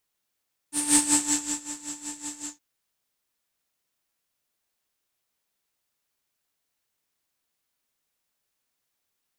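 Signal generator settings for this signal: synth patch with tremolo D4, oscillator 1 triangle, interval +19 st, sub -30 dB, noise -1 dB, filter lowpass, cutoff 6.5 kHz, Q 10, filter envelope 0.5 oct, filter decay 0.59 s, filter sustain 45%, attack 172 ms, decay 0.74 s, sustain -17 dB, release 0.14 s, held 1.73 s, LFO 5.3 Hz, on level 14 dB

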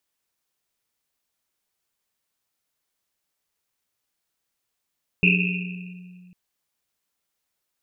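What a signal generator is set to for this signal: Risset drum, pitch 180 Hz, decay 2.41 s, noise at 2.6 kHz, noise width 300 Hz, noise 50%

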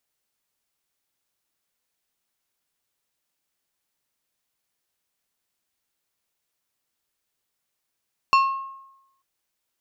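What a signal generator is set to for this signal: glass hit plate, lowest mode 1.08 kHz, decay 0.90 s, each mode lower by 7 dB, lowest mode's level -12 dB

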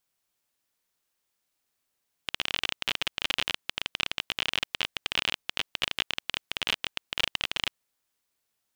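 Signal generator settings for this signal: random clicks 29 per s -9.5 dBFS 5.41 s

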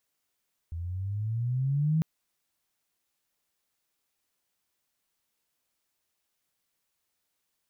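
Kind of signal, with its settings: gliding synth tone sine, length 1.30 s, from 81.5 Hz, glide +12 st, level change +11 dB, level -21.5 dB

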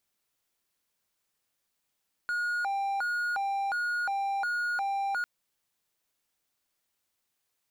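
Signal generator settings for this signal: siren hi-lo 791–1440 Hz 1.4 per s triangle -25.5 dBFS 2.95 s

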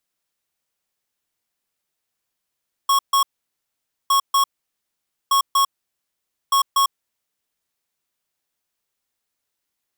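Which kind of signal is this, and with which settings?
beep pattern square 1.1 kHz, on 0.10 s, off 0.14 s, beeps 2, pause 0.87 s, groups 4, -16 dBFS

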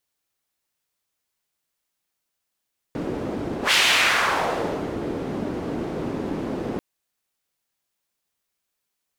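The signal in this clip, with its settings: whoosh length 3.84 s, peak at 0.77 s, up 0.11 s, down 1.34 s, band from 310 Hz, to 2.9 kHz, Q 1.4, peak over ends 10.5 dB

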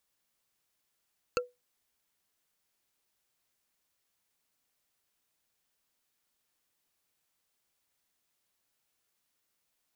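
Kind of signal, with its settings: wood hit bar, lowest mode 493 Hz, decay 0.20 s, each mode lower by 1 dB, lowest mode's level -23 dB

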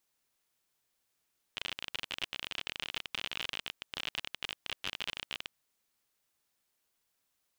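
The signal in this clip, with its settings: random clicks 41 per s -19.5 dBFS 3.94 s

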